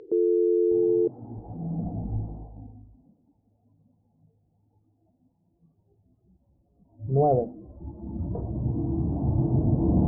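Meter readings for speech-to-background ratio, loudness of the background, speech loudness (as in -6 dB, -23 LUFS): -4.5 dB, -23.5 LUFS, -28.0 LUFS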